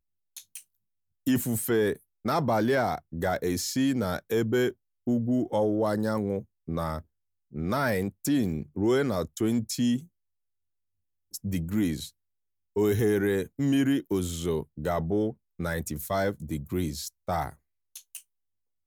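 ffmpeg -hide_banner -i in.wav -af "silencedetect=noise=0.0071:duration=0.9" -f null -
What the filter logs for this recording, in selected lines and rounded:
silence_start: 10.04
silence_end: 11.34 | silence_duration: 1.30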